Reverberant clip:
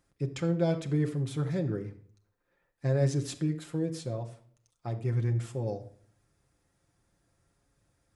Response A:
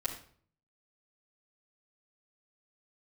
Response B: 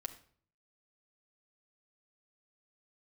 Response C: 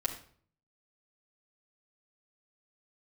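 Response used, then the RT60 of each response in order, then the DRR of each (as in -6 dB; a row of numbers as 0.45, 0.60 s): B; not exponential, not exponential, not exponential; -8.0, 3.0, -3.5 dB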